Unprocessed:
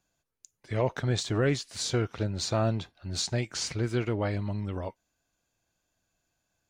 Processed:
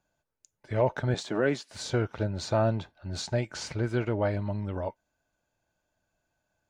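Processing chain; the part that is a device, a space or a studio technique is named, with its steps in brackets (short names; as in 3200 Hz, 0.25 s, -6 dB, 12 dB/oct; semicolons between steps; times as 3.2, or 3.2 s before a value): 1.14–1.7 HPF 170 Hz 24 dB/oct; inside a helmet (high shelf 3100 Hz -8 dB; small resonant body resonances 610/870/1500 Hz, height 7 dB, ringing for 30 ms)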